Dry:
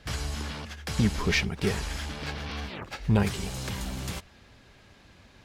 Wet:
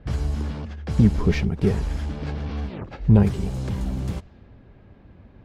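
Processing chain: tilt shelf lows +9 dB, about 880 Hz; level-controlled noise filter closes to 2.4 kHz, open at -22 dBFS

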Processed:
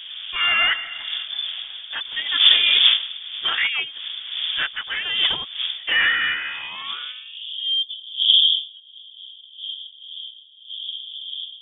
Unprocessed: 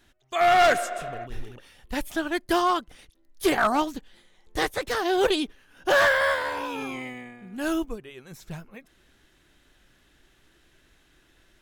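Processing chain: wind noise 330 Hz -24 dBFS; low-pass sweep 2.1 kHz -> 350 Hz, 6.93–7.67 s; frequency inversion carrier 3.5 kHz; trim -3 dB

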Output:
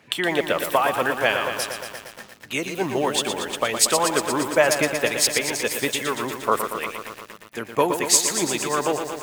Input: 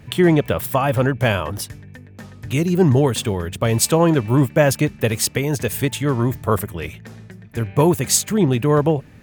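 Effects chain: harmonic-percussive split harmonic -9 dB; frequency weighting A; bit-crushed delay 117 ms, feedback 80%, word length 7-bit, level -7.5 dB; trim +1.5 dB

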